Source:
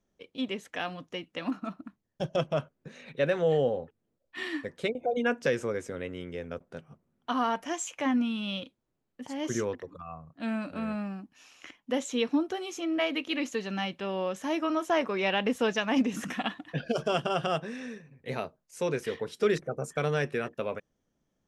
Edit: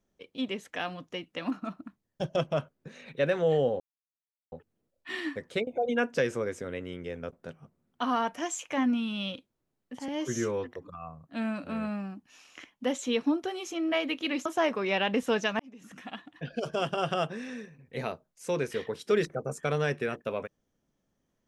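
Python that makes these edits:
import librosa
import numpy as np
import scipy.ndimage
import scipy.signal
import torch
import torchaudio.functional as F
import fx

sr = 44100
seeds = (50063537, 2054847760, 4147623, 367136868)

y = fx.edit(x, sr, fx.insert_silence(at_s=3.8, length_s=0.72),
    fx.stretch_span(start_s=9.36, length_s=0.43, factor=1.5),
    fx.cut(start_s=13.52, length_s=1.26),
    fx.fade_in_span(start_s=15.92, length_s=1.53), tone=tone)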